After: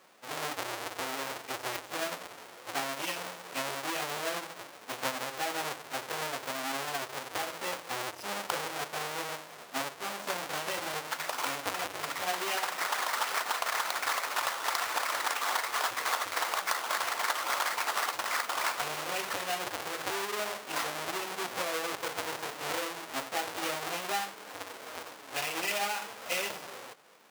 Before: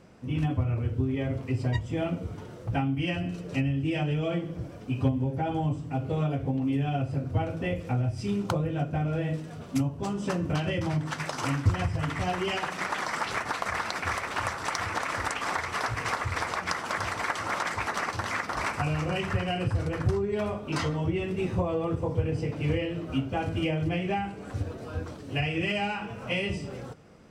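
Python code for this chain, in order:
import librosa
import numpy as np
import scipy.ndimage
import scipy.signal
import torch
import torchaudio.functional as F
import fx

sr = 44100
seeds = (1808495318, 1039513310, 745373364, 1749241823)

y = fx.halfwave_hold(x, sr)
y = scipy.signal.sosfilt(scipy.signal.butter(2, 660.0, 'highpass', fs=sr, output='sos'), y)
y = y * librosa.db_to_amplitude(-3.5)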